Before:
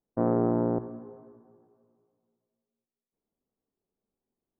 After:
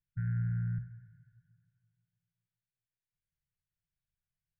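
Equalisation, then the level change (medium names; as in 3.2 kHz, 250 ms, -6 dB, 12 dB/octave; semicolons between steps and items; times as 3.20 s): brick-wall FIR band-stop 170–1400 Hz; distance through air 420 m; +4.0 dB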